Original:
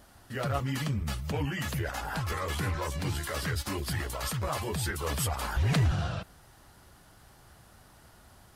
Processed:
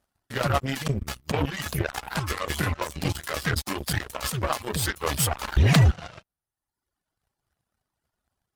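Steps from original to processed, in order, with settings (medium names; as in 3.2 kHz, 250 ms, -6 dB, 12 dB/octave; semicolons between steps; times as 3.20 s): reverb removal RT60 1.6 s; in parallel at +0.5 dB: compression, threshold -42 dBFS, peak gain reduction 16.5 dB; on the sum: Chebyshev shaper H 7 -17 dB, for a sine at -16.5 dBFS; trim +7 dB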